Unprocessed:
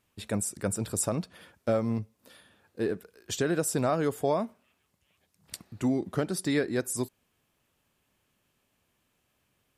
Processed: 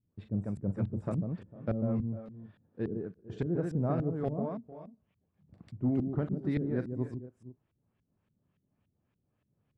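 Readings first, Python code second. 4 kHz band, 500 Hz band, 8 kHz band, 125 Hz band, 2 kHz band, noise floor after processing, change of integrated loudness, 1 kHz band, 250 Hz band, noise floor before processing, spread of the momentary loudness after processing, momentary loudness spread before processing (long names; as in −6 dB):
below −20 dB, −7.0 dB, below −35 dB, +2.0 dB, −13.5 dB, −80 dBFS, −4.0 dB, −9.0 dB, −1.5 dB, −75 dBFS, 19 LU, 12 LU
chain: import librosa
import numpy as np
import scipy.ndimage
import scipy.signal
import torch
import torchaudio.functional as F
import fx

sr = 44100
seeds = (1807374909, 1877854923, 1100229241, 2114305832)

y = fx.peak_eq(x, sr, hz=130.0, db=10.0, octaves=2.2)
y = np.clip(10.0 ** (13.5 / 20.0) * y, -1.0, 1.0) / 10.0 ** (13.5 / 20.0)
y = fx.echo_multitap(y, sr, ms=(41, 145, 451, 483), db=(-13.5, -4.5, -17.5, -18.0))
y = fx.filter_lfo_lowpass(y, sr, shape='saw_up', hz=3.5, low_hz=200.0, high_hz=3100.0, q=0.76)
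y = y * librosa.db_to_amplitude(-8.5)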